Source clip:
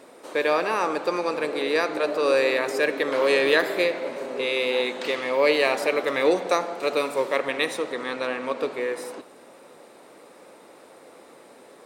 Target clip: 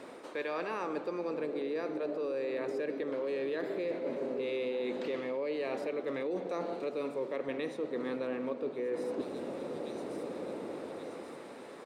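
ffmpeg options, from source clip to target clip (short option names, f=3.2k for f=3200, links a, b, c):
-filter_complex "[0:a]aemphasis=mode=reproduction:type=50kf,acrossover=split=550|3900[a][b][c];[a]dynaudnorm=f=130:g=17:m=12dB[d];[b]highpass=f=740:p=1[e];[c]aecho=1:1:1130|2260|3390|4520|5650:0.251|0.118|0.0555|0.0261|0.0123[f];[d][e][f]amix=inputs=3:normalize=0,alimiter=limit=-18dB:level=0:latency=1:release=449,areverse,acompressor=threshold=-36dB:ratio=6,areverse,volume=3dB"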